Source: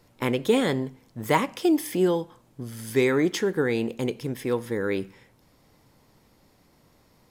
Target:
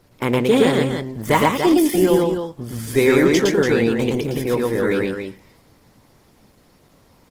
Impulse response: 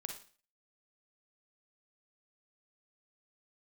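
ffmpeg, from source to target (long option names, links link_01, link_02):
-filter_complex "[0:a]asplit=2[link_01][link_02];[link_02]aecho=0:1:113.7|288.6:0.891|0.447[link_03];[link_01][link_03]amix=inputs=2:normalize=0,volume=5dB" -ar 48000 -c:a libopus -b:a 16k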